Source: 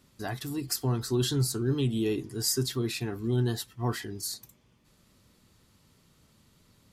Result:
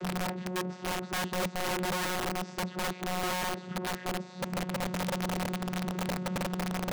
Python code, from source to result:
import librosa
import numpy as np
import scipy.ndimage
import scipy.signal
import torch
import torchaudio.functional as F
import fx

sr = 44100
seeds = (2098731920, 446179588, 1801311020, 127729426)

y = fx.delta_mod(x, sr, bps=64000, step_db=-24.5)
y = fx.lowpass(y, sr, hz=1200.0, slope=6)
y = fx.vocoder(y, sr, bands=16, carrier='saw', carrier_hz=182.0)
y = (np.mod(10.0 ** (26.5 / 20.0) * y + 1.0, 2.0) - 1.0) / 10.0 ** (26.5 / 20.0)